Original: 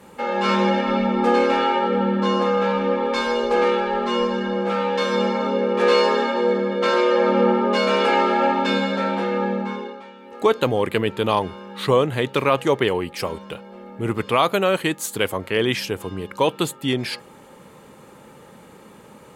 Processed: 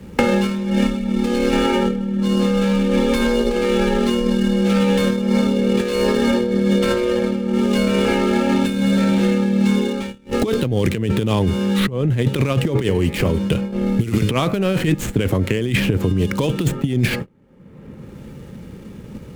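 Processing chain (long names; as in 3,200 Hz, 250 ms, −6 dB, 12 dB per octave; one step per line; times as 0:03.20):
running median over 9 samples
0:12.61–0:14.94: hum removal 105.7 Hz, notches 25
noise gate −39 dBFS, range −35 dB
guitar amp tone stack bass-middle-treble 10-0-1
compressor whose output falls as the input rises −46 dBFS, ratio −0.5
boost into a limiter +35.5 dB
multiband upward and downward compressor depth 100%
level −6.5 dB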